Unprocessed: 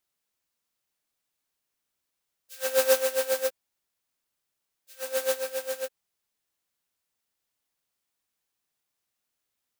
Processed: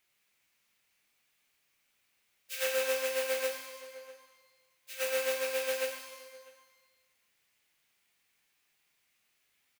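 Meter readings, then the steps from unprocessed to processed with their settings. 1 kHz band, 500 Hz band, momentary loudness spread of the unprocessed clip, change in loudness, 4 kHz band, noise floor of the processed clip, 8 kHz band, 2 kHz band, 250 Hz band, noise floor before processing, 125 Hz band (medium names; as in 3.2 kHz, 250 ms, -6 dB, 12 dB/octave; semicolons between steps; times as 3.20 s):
-4.0 dB, -5.0 dB, 12 LU, -5.5 dB, -1.5 dB, -76 dBFS, -5.0 dB, 0.0 dB, -4.5 dB, -83 dBFS, no reading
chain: peaking EQ 2.3 kHz +11 dB 0.93 oct; echo from a far wall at 110 m, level -28 dB; compression 8:1, threshold -34 dBFS, peak gain reduction 18.5 dB; pitch-shifted reverb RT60 1.2 s, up +12 st, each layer -8 dB, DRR 2 dB; trim +3 dB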